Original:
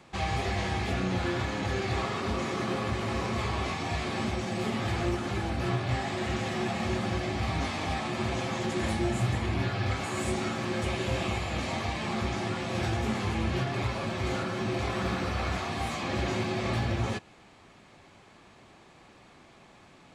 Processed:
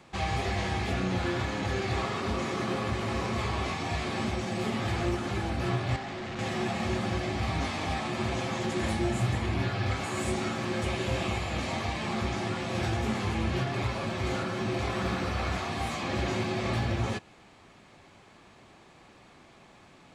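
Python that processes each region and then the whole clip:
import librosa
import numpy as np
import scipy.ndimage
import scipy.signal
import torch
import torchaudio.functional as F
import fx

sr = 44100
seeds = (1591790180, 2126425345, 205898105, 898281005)

y = fx.chain(x, sr, fx.highpass(hz=92.0, slope=24),
    fx.clip_hard(threshold_db=-34.5),
    fx.air_absorb(metres=85.0), at=(5.96, 6.39))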